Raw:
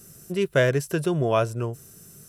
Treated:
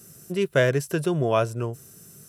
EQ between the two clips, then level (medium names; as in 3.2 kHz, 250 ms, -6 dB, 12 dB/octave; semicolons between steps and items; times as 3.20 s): high-pass 75 Hz; 0.0 dB